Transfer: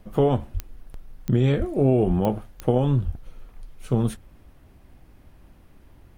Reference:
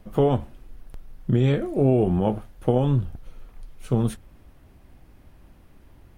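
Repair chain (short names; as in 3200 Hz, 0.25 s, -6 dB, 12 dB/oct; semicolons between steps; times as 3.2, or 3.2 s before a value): de-click; de-plosive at 0.53/1.58/2.07/3.05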